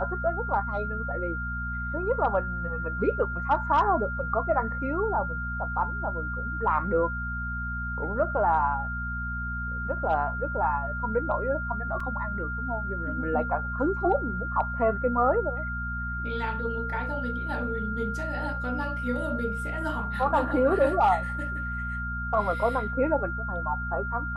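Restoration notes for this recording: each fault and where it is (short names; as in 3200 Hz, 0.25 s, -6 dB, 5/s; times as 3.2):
hum 60 Hz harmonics 4 -34 dBFS
tone 1400 Hz -32 dBFS
12 gap 3.8 ms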